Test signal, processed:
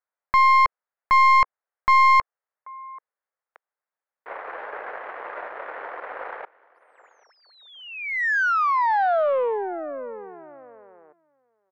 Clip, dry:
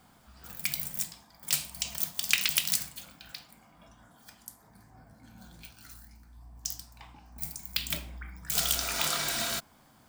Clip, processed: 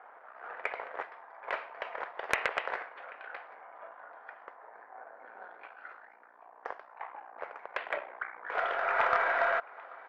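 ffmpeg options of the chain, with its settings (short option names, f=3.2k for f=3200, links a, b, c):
-filter_complex "[0:a]aeval=exprs='if(lt(val(0),0),0.251*val(0),val(0))':c=same,asplit=2[a][b];[b]alimiter=limit=-16.5dB:level=0:latency=1:release=411,volume=-2dB[c];[a][c]amix=inputs=2:normalize=0,asoftclip=type=tanh:threshold=-8dB,asuperpass=centerf=940:order=8:qfactor=0.65,asplit=2[d][e];[e]aecho=0:1:785:0.0708[f];[d][f]amix=inputs=2:normalize=0,aeval=exprs='0.133*(cos(1*acos(clip(val(0)/0.133,-1,1)))-cos(1*PI/2))+0.000841*(cos(2*acos(clip(val(0)/0.133,-1,1)))-cos(2*PI/2))+0.0531*(cos(4*acos(clip(val(0)/0.133,-1,1)))-cos(4*PI/2))+0.00668*(cos(5*acos(clip(val(0)/0.133,-1,1)))-cos(5*PI/2))+0.0266*(cos(6*acos(clip(val(0)/0.133,-1,1)))-cos(6*PI/2))':c=same,volume=8dB"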